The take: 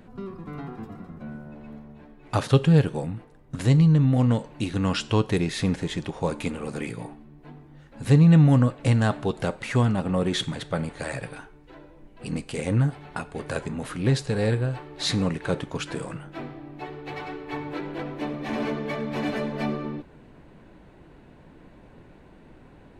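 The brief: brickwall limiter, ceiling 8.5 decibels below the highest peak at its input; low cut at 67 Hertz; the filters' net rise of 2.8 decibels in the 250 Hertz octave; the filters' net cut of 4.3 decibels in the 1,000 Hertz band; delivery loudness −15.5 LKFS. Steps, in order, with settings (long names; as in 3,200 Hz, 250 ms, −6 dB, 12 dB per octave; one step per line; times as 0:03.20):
high-pass filter 67 Hz
parametric band 250 Hz +4.5 dB
parametric band 1,000 Hz −6 dB
level +11 dB
brickwall limiter −2.5 dBFS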